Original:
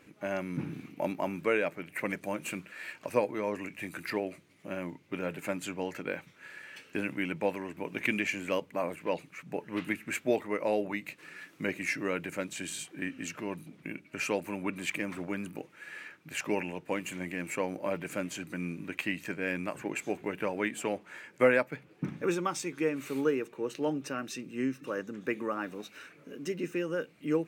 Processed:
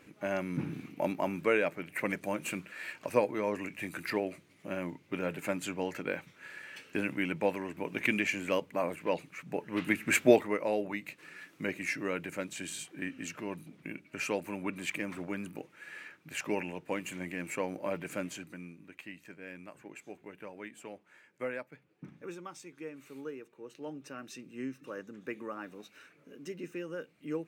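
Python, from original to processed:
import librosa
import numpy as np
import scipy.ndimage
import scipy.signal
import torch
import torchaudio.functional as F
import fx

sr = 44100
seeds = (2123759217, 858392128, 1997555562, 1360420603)

y = fx.gain(x, sr, db=fx.line((9.75, 0.5), (10.22, 9.0), (10.64, -2.0), (18.28, -2.0), (18.77, -13.5), (23.6, -13.5), (24.33, -7.0)))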